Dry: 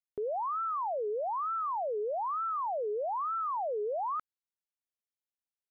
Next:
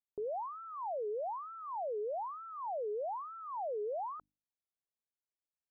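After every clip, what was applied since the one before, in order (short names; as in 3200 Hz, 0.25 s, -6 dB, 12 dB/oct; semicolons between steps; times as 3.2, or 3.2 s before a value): LPF 1000 Hz 24 dB/oct; notches 50/100/150/200/250/300 Hz; gain -4 dB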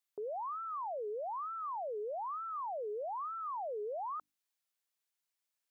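HPF 1200 Hz 6 dB/oct; limiter -44.5 dBFS, peak gain reduction 5 dB; gain +8.5 dB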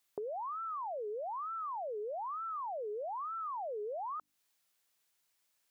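compressor 6:1, threshold -49 dBFS, peak gain reduction 10 dB; gain +10 dB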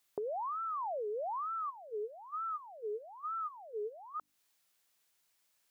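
spectral gain 1.7–4.18, 470–1200 Hz -14 dB; gain +2 dB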